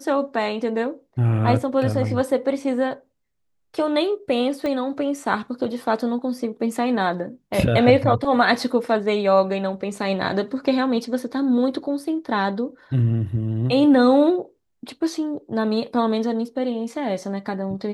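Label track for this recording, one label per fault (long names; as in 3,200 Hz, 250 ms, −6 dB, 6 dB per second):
4.660000	4.660000	click −15 dBFS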